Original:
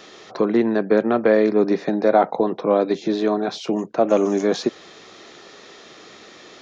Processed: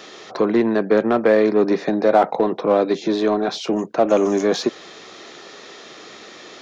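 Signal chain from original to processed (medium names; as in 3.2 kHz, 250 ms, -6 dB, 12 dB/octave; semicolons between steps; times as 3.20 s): bass shelf 120 Hz -8 dB; in parallel at -4.5 dB: saturation -22 dBFS, distortion -6 dB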